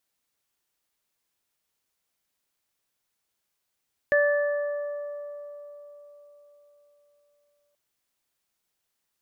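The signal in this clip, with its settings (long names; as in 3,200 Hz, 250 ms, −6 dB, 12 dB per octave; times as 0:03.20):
harmonic partials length 3.63 s, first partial 582 Hz, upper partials −18/−2 dB, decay 4.17 s, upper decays 3.96/1.71 s, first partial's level −18.5 dB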